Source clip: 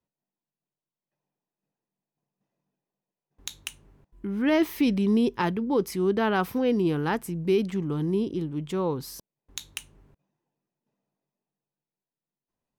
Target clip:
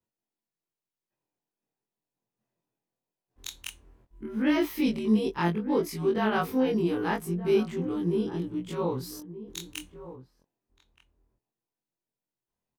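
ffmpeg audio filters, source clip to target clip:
ffmpeg -i in.wav -filter_complex "[0:a]afftfilt=real='re':imag='-im':win_size=2048:overlap=0.75,asplit=2[link_01][link_02];[link_02]adelay=1224,volume=-14dB,highshelf=frequency=4000:gain=-27.6[link_03];[link_01][link_03]amix=inputs=2:normalize=0,volume=2.5dB" out.wav

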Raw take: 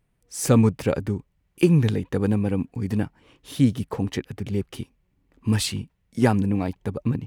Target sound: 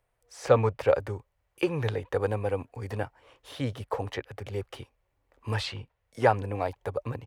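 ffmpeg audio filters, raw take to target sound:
ffmpeg -i in.wav -filter_complex "[0:a]firequalizer=gain_entry='entry(110,0);entry(180,-14);entry(520,11);entry(2600,4)':delay=0.05:min_phase=1,acrossover=split=150|4700[link_01][link_02][link_03];[link_03]acompressor=threshold=-50dB:ratio=6[link_04];[link_01][link_02][link_04]amix=inputs=3:normalize=0,volume=-7dB" out.wav

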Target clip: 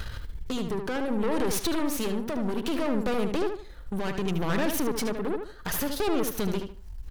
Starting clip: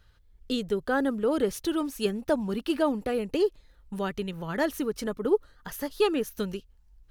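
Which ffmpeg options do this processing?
ffmpeg -i in.wav -filter_complex "[0:a]asplit=2[link_01][link_02];[link_02]acompressor=mode=upward:threshold=-29dB:ratio=2.5,volume=0dB[link_03];[link_01][link_03]amix=inputs=2:normalize=0,alimiter=limit=-17.5dB:level=0:latency=1:release=22,acompressor=threshold=-26dB:ratio=6,asoftclip=type=tanh:threshold=-30.5dB,tremolo=f=0.65:d=0.3,aeval=exprs='0.133*(cos(1*acos(clip(val(0)/0.133,-1,1)))-cos(1*PI/2))+0.0188*(cos(8*acos(clip(val(0)/0.133,-1,1)))-cos(8*PI/2))':channel_layout=same,asplit=2[link_04][link_05];[link_05]adelay=75,lowpass=frequency=3600:poles=1,volume=-6dB,asplit=2[link_06][link_07];[link_07]adelay=75,lowpass=frequency=3600:poles=1,volume=0.28,asplit=2[link_08][link_09];[link_09]adelay=75,lowpass=frequency=3600:poles=1,volume=0.28,asplit=2[link_10][link_11];[link_11]adelay=75,lowpass=frequency=3600:poles=1,volume=0.28[link_12];[link_06][link_08][link_10][link_12]amix=inputs=4:normalize=0[link_13];[link_04][link_13]amix=inputs=2:normalize=0,volume=6dB" out.wav

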